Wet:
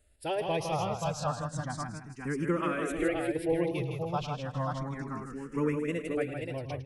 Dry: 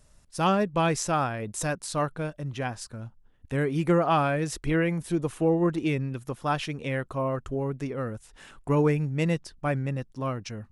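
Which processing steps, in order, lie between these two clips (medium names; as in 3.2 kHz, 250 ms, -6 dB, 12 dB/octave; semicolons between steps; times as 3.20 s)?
multi-tap echo 167/250/500/633/826/837 ms -14/-5.5/-14/-17.5/-4.5/-18.5 dB; time stretch by phase-locked vocoder 0.64×; barber-pole phaser +0.32 Hz; trim -3.5 dB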